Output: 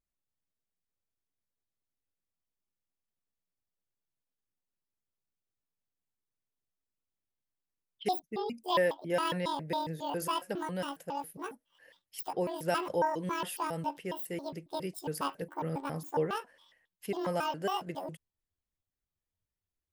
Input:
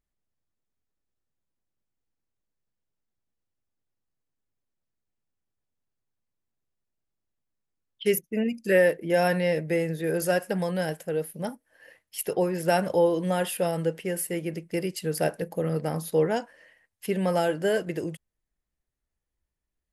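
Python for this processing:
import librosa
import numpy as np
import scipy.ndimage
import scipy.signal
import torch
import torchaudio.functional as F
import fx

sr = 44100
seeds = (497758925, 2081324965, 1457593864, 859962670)

y = fx.pitch_trill(x, sr, semitones=10.5, every_ms=137)
y = F.gain(torch.from_numpy(y), -7.5).numpy()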